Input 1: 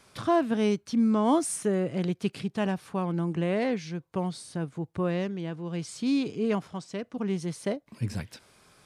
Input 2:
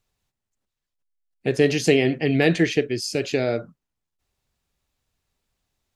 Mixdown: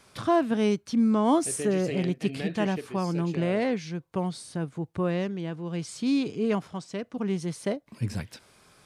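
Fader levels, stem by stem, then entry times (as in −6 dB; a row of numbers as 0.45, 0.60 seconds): +1.0, −16.5 decibels; 0.00, 0.00 seconds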